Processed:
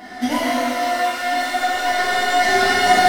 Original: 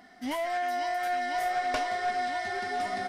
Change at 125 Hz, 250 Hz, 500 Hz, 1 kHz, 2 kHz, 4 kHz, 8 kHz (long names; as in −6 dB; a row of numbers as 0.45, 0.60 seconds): can't be measured, +15.5 dB, +11.0 dB, +11.5 dB, +14.5 dB, +17.5 dB, +18.0 dB